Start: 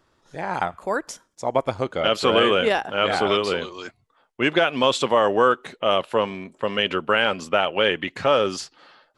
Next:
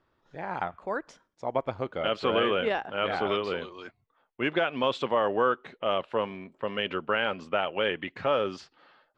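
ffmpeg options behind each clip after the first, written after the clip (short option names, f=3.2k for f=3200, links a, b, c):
-af "lowpass=3.2k,volume=-7dB"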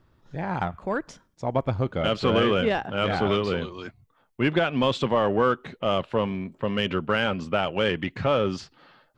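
-filter_complex "[0:a]bass=f=250:g=13,treble=f=4k:g=5,asplit=2[a][b];[b]asoftclip=type=tanh:threshold=-25dB,volume=-6dB[c];[a][c]amix=inputs=2:normalize=0"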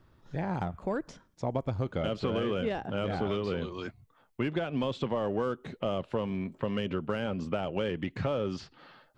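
-filter_complex "[0:a]acrossover=split=680|5100[a][b][c];[a]acompressor=threshold=-29dB:ratio=4[d];[b]acompressor=threshold=-41dB:ratio=4[e];[c]acompressor=threshold=-59dB:ratio=4[f];[d][e][f]amix=inputs=3:normalize=0"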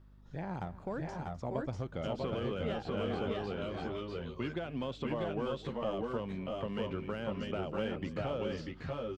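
-filter_complex "[0:a]aeval=exprs='val(0)+0.00316*(sin(2*PI*50*n/s)+sin(2*PI*2*50*n/s)/2+sin(2*PI*3*50*n/s)/3+sin(2*PI*4*50*n/s)/4+sin(2*PI*5*50*n/s)/5)':c=same,asplit=2[a][b];[b]aecho=0:1:256|640|653:0.133|0.631|0.668[c];[a][c]amix=inputs=2:normalize=0,volume=-7dB"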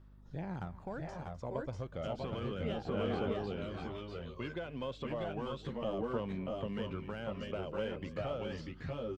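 -af "aphaser=in_gain=1:out_gain=1:delay=2:decay=0.33:speed=0.32:type=sinusoidal,volume=-3dB"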